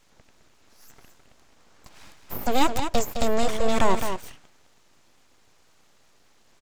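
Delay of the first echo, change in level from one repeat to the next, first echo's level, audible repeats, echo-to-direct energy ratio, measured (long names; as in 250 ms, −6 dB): 211 ms, repeats not evenly spaced, −8.0 dB, 1, −8.0 dB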